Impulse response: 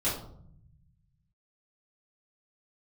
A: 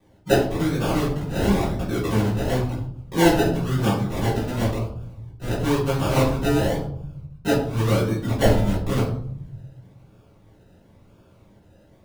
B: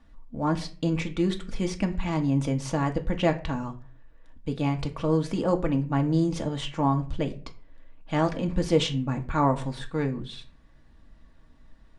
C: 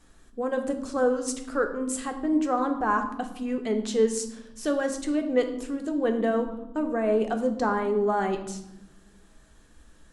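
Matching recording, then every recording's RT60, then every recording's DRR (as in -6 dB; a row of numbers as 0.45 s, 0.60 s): A; 0.65 s, 0.40 s, 1.0 s; -11.0 dB, 3.0 dB, 5.0 dB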